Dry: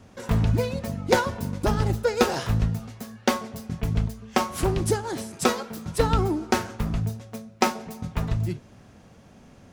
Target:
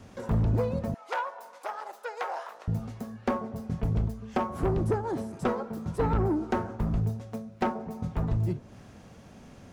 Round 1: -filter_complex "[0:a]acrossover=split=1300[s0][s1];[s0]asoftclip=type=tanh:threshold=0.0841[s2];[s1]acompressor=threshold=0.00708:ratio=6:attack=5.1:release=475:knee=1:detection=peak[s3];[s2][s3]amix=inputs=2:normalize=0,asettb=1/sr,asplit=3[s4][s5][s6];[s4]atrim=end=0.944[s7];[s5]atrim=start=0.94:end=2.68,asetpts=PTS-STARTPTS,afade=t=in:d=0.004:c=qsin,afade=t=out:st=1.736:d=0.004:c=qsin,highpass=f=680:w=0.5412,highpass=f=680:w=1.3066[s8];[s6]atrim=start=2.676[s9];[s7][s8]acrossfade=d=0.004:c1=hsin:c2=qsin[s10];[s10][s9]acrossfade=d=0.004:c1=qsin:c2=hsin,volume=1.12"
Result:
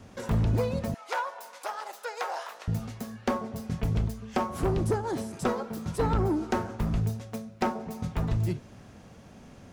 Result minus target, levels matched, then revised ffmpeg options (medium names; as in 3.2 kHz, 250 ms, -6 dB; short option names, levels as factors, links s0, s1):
compression: peak gain reduction -9 dB
-filter_complex "[0:a]acrossover=split=1300[s0][s1];[s0]asoftclip=type=tanh:threshold=0.0841[s2];[s1]acompressor=threshold=0.002:ratio=6:attack=5.1:release=475:knee=1:detection=peak[s3];[s2][s3]amix=inputs=2:normalize=0,asettb=1/sr,asplit=3[s4][s5][s6];[s4]atrim=end=0.944[s7];[s5]atrim=start=0.94:end=2.68,asetpts=PTS-STARTPTS,afade=t=in:d=0.004:c=qsin,afade=t=out:st=1.736:d=0.004:c=qsin,highpass=f=680:w=0.5412,highpass=f=680:w=1.3066[s8];[s6]atrim=start=2.676[s9];[s7][s8]acrossfade=d=0.004:c1=hsin:c2=qsin[s10];[s10][s9]acrossfade=d=0.004:c1=qsin:c2=hsin,volume=1.12"